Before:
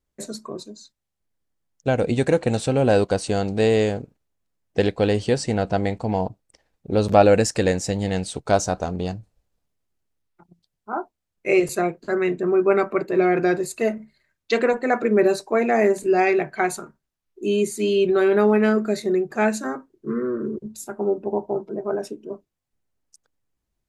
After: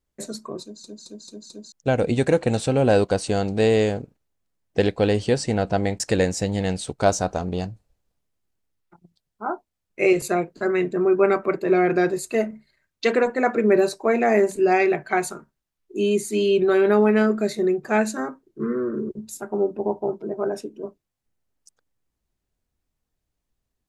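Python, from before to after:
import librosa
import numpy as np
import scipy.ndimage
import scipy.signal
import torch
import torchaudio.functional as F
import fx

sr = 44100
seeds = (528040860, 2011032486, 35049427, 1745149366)

y = fx.edit(x, sr, fx.stutter_over(start_s=0.62, slice_s=0.22, count=5),
    fx.cut(start_s=6.0, length_s=1.47), tone=tone)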